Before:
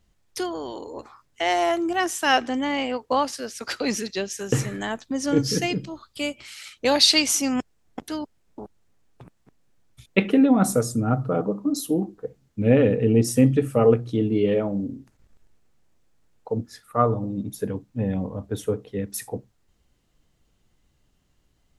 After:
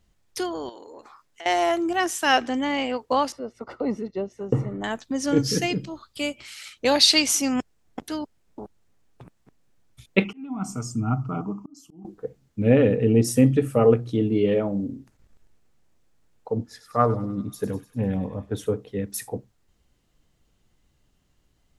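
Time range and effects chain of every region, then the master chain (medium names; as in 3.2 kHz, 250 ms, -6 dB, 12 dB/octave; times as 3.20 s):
0.69–1.46 s: peaking EQ 61 Hz -13.5 dB 3 oct + compression 3:1, threshold -41 dBFS
3.32–4.84 s: Savitzky-Golay filter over 65 samples + upward compressor, threshold -44 dBFS
10.24–12.05 s: slow attack 702 ms + static phaser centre 2.6 kHz, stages 8
16.50–18.67 s: treble shelf 9.6 kHz -5.5 dB + feedback echo behind a high-pass 99 ms, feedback 60%, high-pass 2.2 kHz, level -8.5 dB + loudspeaker Doppler distortion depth 0.12 ms
whole clip: none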